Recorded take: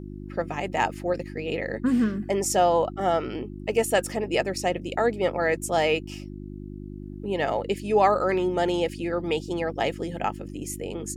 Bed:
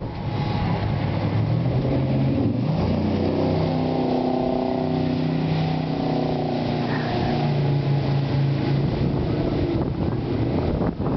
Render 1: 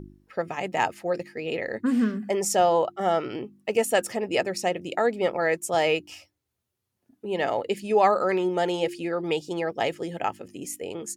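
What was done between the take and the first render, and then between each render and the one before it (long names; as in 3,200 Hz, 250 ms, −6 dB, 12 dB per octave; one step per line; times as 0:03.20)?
hum removal 50 Hz, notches 7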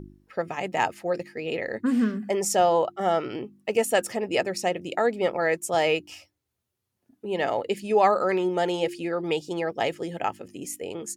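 no processing that can be heard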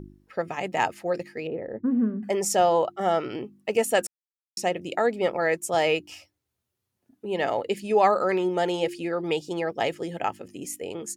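0:01.47–0:02.23: Bessel low-pass filter 590 Hz
0:04.07–0:04.57: silence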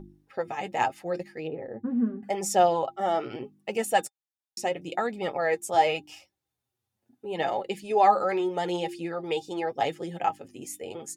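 flanger 0.79 Hz, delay 5 ms, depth 4.5 ms, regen +24%
hollow resonant body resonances 800/3,600 Hz, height 13 dB, ringing for 95 ms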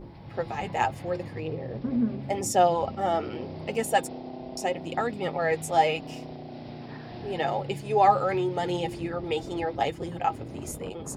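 mix in bed −17 dB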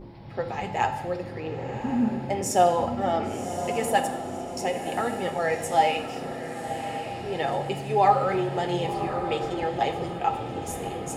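feedback delay with all-pass diffusion 1,085 ms, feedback 48%, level −9 dB
dense smooth reverb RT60 1 s, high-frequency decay 0.85×, DRR 7 dB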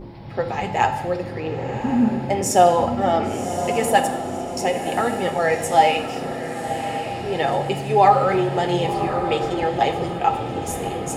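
level +6 dB
brickwall limiter −3 dBFS, peak gain reduction 2 dB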